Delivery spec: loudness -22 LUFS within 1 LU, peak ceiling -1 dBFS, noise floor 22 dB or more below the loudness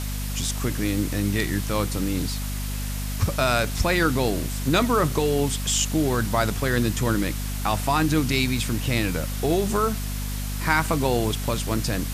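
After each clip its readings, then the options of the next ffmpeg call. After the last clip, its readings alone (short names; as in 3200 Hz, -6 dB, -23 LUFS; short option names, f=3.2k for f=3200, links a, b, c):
hum 50 Hz; harmonics up to 250 Hz; hum level -27 dBFS; noise floor -29 dBFS; noise floor target -46 dBFS; loudness -24.0 LUFS; peak -6.5 dBFS; loudness target -22.0 LUFS
-> -af "bandreject=f=50:t=h:w=6,bandreject=f=100:t=h:w=6,bandreject=f=150:t=h:w=6,bandreject=f=200:t=h:w=6,bandreject=f=250:t=h:w=6"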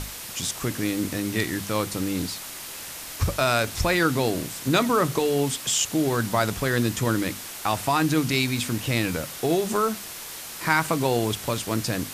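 hum none; noise floor -38 dBFS; noise floor target -47 dBFS
-> -af "afftdn=nr=9:nf=-38"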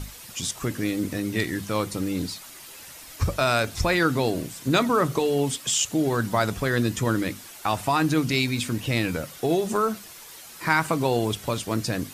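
noise floor -44 dBFS; noise floor target -47 dBFS
-> -af "afftdn=nr=6:nf=-44"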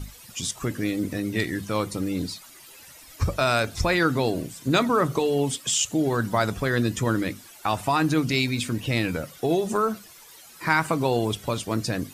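noise floor -48 dBFS; loudness -25.0 LUFS; peak -6.5 dBFS; loudness target -22.0 LUFS
-> -af "volume=3dB"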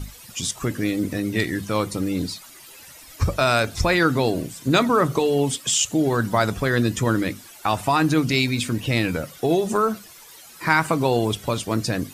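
loudness -22.0 LUFS; peak -3.5 dBFS; noise floor -45 dBFS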